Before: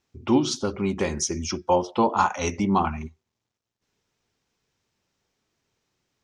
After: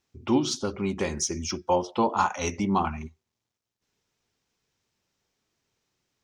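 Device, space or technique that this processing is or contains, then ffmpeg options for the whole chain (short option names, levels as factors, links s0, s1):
exciter from parts: -filter_complex "[0:a]asplit=2[s0][s1];[s1]highpass=f=3700:p=1,asoftclip=type=tanh:threshold=0.0501,volume=0.422[s2];[s0][s2]amix=inputs=2:normalize=0,volume=0.708"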